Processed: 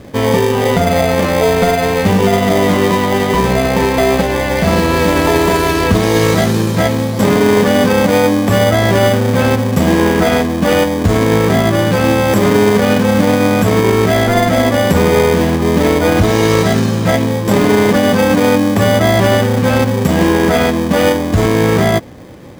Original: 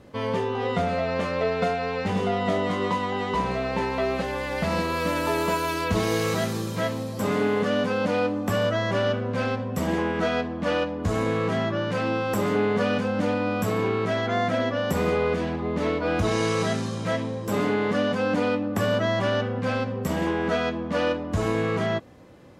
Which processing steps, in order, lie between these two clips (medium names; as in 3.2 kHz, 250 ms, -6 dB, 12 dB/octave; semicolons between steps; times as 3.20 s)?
in parallel at -2.5 dB: sample-and-hold 32×; on the sum: loudness maximiser +12 dB; trim -1 dB